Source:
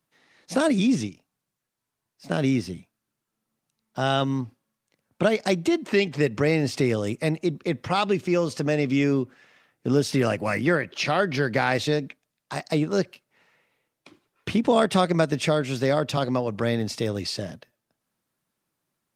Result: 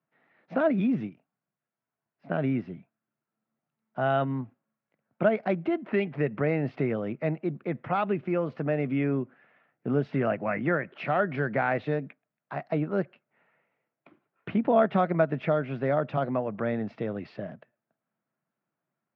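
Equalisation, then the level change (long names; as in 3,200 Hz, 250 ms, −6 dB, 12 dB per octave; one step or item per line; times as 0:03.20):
loudspeaker in its box 130–2,400 Hz, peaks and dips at 140 Hz +5 dB, 210 Hz +4 dB, 670 Hz +7 dB, 1,400 Hz +4 dB
−6.0 dB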